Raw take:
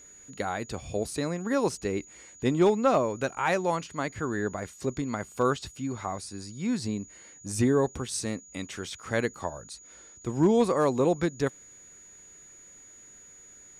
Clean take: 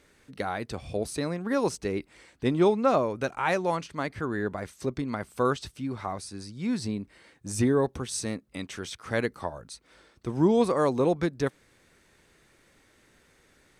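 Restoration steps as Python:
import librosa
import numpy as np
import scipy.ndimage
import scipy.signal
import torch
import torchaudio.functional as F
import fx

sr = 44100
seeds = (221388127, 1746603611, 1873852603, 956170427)

y = fx.fix_declip(x, sr, threshold_db=-14.0)
y = fx.notch(y, sr, hz=6800.0, q=30.0)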